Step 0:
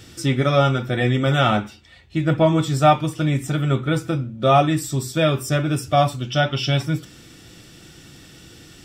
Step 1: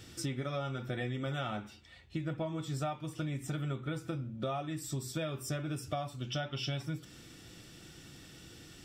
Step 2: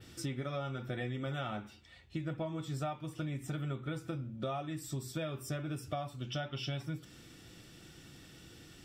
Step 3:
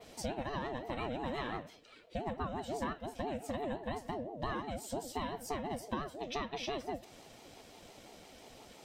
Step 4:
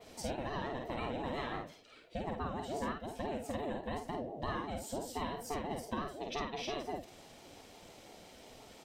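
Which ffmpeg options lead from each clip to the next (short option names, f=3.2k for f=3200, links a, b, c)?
-af "acompressor=threshold=-25dB:ratio=10,volume=-8dB"
-af "adynamicequalizer=threshold=0.00112:dfrequency=6600:dqfactor=0.83:tfrequency=6600:tqfactor=0.83:attack=5:release=100:ratio=0.375:range=2:mode=cutabove:tftype=bell,volume=-1.5dB"
-af "aeval=exprs='val(0)*sin(2*PI*470*n/s+470*0.25/5.8*sin(2*PI*5.8*n/s))':c=same,volume=2.5dB"
-filter_complex "[0:a]asplit=2[a][b];[b]adelay=50,volume=-4dB[c];[a][c]amix=inputs=2:normalize=0,volume=-1.5dB"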